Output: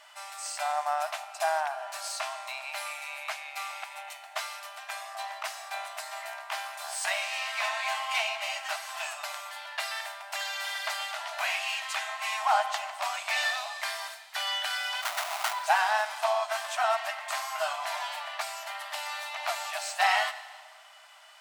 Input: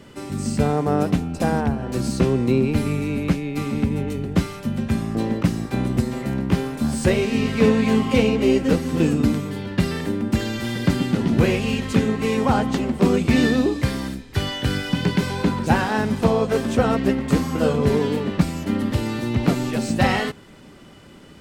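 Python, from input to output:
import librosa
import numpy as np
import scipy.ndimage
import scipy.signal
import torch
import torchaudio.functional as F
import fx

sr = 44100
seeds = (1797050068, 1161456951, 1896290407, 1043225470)

y = fx.sample_hold(x, sr, seeds[0], rate_hz=1700.0, jitter_pct=20, at=(15.01, 15.52), fade=0.02)
y = fx.brickwall_highpass(y, sr, low_hz=600.0)
y = fx.rev_schroeder(y, sr, rt60_s=1.6, comb_ms=32, drr_db=13.0)
y = y * 10.0 ** (-1.5 / 20.0)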